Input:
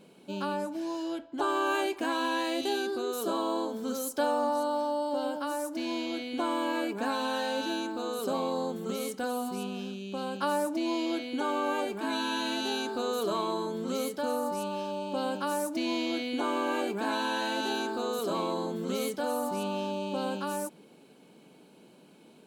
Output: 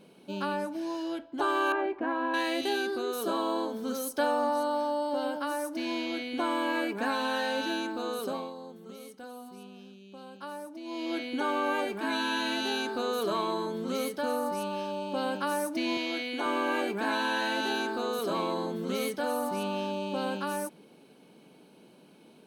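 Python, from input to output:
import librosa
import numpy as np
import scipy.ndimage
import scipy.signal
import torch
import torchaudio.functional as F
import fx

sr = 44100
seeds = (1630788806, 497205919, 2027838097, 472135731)

y = fx.lowpass(x, sr, hz=1300.0, slope=12, at=(1.72, 2.34))
y = fx.highpass(y, sr, hz=370.0, slope=6, at=(15.97, 16.46))
y = fx.edit(y, sr, fx.fade_down_up(start_s=8.15, length_s=3.07, db=-12.0, fade_s=0.39), tone=tone)
y = fx.notch(y, sr, hz=7300.0, q=5.7)
y = fx.dynamic_eq(y, sr, hz=1900.0, q=1.8, threshold_db=-49.0, ratio=4.0, max_db=6)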